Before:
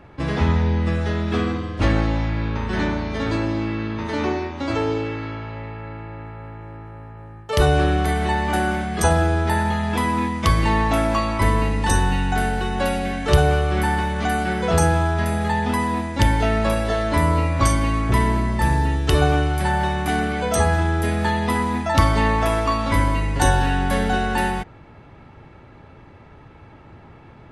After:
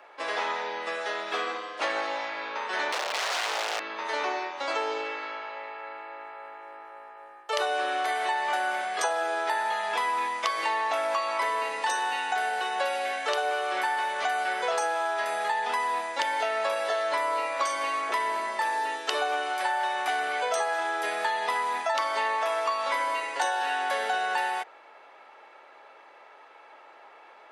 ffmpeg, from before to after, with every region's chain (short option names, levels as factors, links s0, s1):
-filter_complex "[0:a]asettb=1/sr,asplit=3[s0][s1][s2];[s0]atrim=end=2.924[s3];[s1]atrim=start=2.92:end=3.8,asetpts=PTS-STARTPTS,afade=t=in:d=0.004:c=qsin,afade=t=out:st=0.876:d=0.004:c=qsin,aecho=1:1:5.2:0.49,atrim=end_sample=38808,aeval=exprs='(mod(10*val(0)+1,2)-1)/10':c=same[s4];[s2]atrim=start=3.796[s5];[s3][s4]acrossfade=d=0.004:c1=hsin:c2=qsin[s6];[s6][s5]acrossfade=d=0.004:c1=qsin:c2=hsin,acrossover=split=7400[s7][s8];[s8]acompressor=threshold=0.00355:ratio=4:attack=1:release=60[s9];[s7][s9]amix=inputs=2:normalize=0,highpass=f=540:w=0.5412,highpass=f=540:w=1.3066,acompressor=threshold=0.0631:ratio=6"